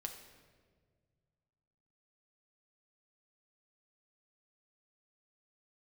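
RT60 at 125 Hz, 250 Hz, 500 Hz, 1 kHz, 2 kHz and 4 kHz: 2.9, 2.3, 2.0, 1.4, 1.3, 1.1 s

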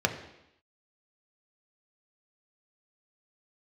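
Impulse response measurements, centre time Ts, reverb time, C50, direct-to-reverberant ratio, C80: 15 ms, 0.85 s, 10.0 dB, 4.0 dB, 12.0 dB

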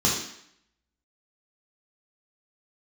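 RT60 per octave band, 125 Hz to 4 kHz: 0.55, 0.70, 0.65, 0.75, 0.75, 0.70 s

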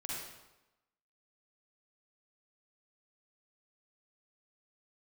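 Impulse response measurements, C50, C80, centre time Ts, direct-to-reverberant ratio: -3.5 dB, 1.0 dB, 87 ms, -5.5 dB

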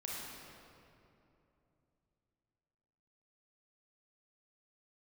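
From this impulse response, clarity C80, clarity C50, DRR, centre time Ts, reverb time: -0.5 dB, -3.0 dB, -5.0 dB, 0.153 s, 2.9 s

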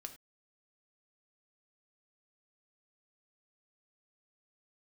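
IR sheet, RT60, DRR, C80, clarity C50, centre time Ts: not exponential, 5.5 dB, 16.0 dB, 12.0 dB, 8 ms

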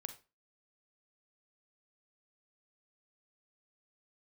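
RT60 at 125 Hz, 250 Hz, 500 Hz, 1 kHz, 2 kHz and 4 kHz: 0.30, 0.35, 0.30, 0.30, 0.30, 0.25 s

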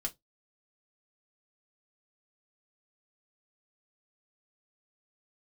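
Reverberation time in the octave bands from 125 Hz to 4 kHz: 0.25, 0.20, 0.20, 0.15, 0.15, 0.15 s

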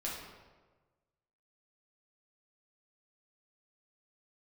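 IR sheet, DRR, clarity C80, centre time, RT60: -5.5 dB, 4.0 dB, 68 ms, 1.3 s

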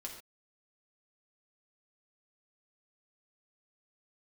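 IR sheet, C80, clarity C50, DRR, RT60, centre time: 8.5 dB, 6.0 dB, -1.0 dB, not exponential, 27 ms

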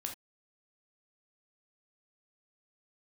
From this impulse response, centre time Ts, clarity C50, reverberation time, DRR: 17 ms, 8.0 dB, not exponential, 2.0 dB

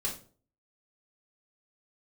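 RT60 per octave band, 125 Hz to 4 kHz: 0.55, 0.50, 0.50, 0.40, 0.30, 0.30 s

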